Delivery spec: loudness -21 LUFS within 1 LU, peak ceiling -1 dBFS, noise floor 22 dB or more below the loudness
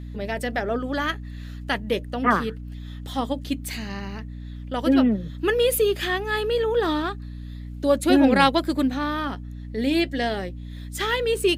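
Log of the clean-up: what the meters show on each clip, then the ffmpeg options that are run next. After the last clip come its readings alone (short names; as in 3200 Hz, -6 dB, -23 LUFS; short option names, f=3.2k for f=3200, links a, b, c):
hum 60 Hz; harmonics up to 300 Hz; hum level -33 dBFS; loudness -23.5 LUFS; peak -4.5 dBFS; loudness target -21.0 LUFS
-> -af "bandreject=f=60:t=h:w=6,bandreject=f=120:t=h:w=6,bandreject=f=180:t=h:w=6,bandreject=f=240:t=h:w=6,bandreject=f=300:t=h:w=6"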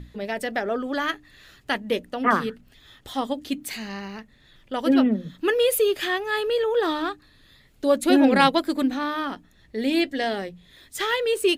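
hum none; loudness -24.0 LUFS; peak -4.5 dBFS; loudness target -21.0 LUFS
-> -af "volume=3dB"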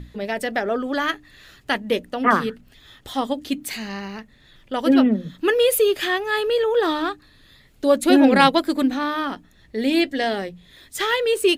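loudness -21.0 LUFS; peak -1.5 dBFS; noise floor -54 dBFS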